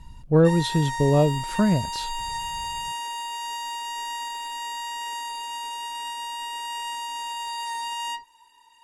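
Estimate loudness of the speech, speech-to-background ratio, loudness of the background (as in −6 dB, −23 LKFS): −21.5 LKFS, 9.5 dB, −31.0 LKFS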